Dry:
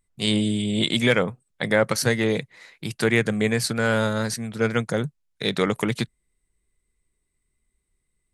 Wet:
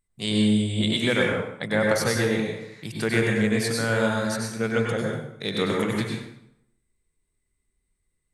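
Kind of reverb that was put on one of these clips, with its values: plate-style reverb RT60 0.78 s, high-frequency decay 0.75×, pre-delay 85 ms, DRR -1.5 dB; gain -5 dB

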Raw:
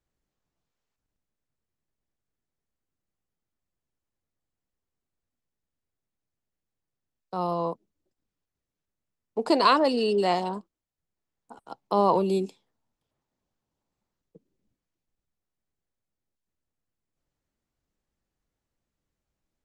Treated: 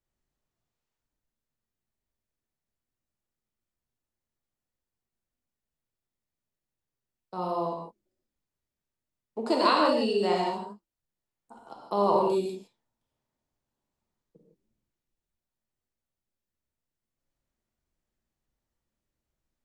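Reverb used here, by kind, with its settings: non-linear reverb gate 0.19 s flat, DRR -1.5 dB; gain -5.5 dB

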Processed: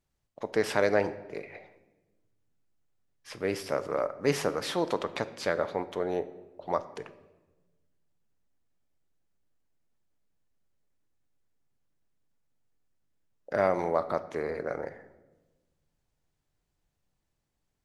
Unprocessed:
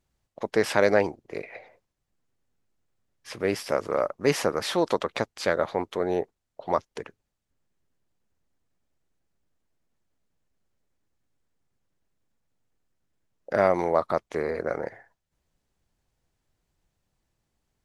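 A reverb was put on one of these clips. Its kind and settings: shoebox room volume 680 m³, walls mixed, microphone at 0.37 m; gain -4.5 dB

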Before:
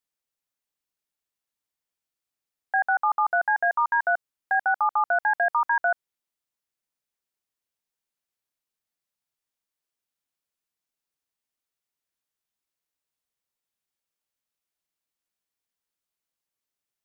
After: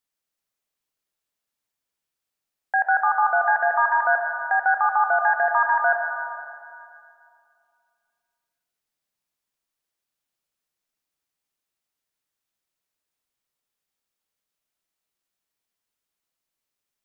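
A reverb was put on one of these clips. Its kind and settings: digital reverb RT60 2.4 s, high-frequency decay 0.75×, pre-delay 60 ms, DRR 2.5 dB; gain +2 dB

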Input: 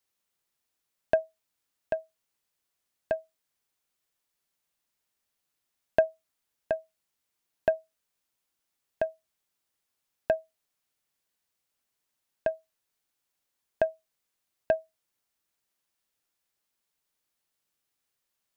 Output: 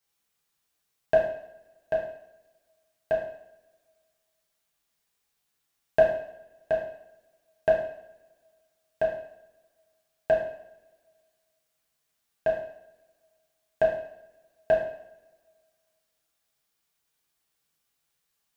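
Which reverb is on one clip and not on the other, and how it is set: two-slope reverb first 0.66 s, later 1.9 s, from -23 dB, DRR -4.5 dB; gain -1.5 dB

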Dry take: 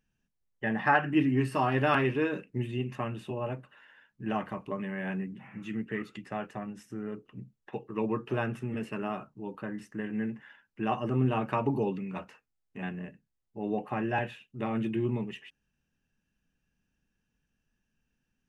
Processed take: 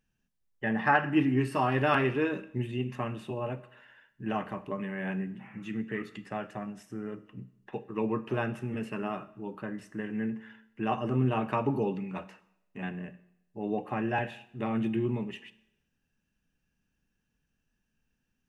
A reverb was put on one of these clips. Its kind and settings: Schroeder reverb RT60 0.79 s, combs from 28 ms, DRR 15 dB

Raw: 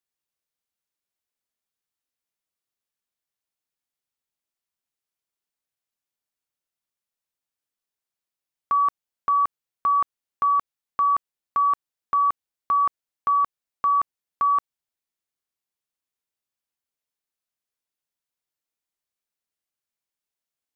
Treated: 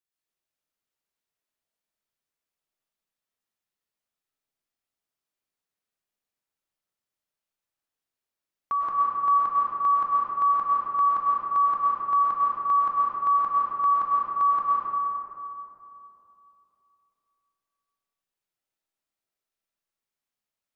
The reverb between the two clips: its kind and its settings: digital reverb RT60 3.1 s, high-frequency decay 0.4×, pre-delay 80 ms, DRR -6 dB; gain -5.5 dB

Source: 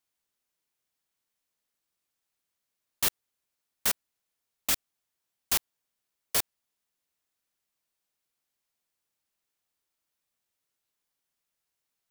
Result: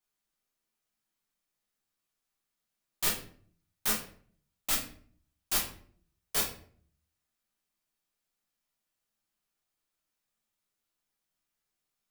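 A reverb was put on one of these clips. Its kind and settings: shoebox room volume 53 m³, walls mixed, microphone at 1.1 m; gain -6.5 dB

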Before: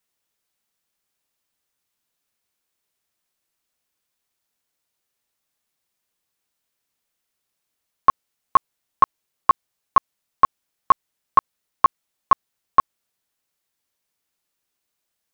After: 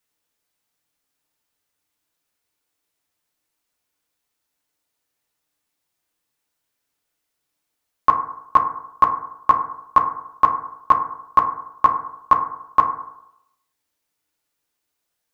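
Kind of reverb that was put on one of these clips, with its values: FDN reverb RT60 0.81 s, low-frequency decay 0.9×, high-frequency decay 0.3×, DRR 3 dB

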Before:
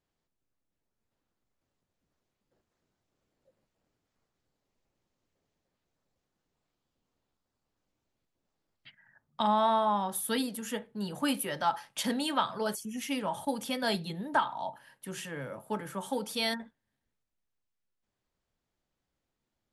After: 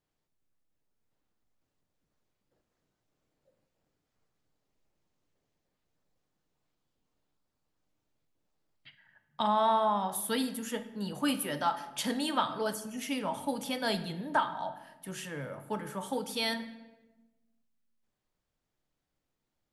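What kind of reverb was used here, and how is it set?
shoebox room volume 620 m³, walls mixed, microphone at 0.47 m; gain -1 dB

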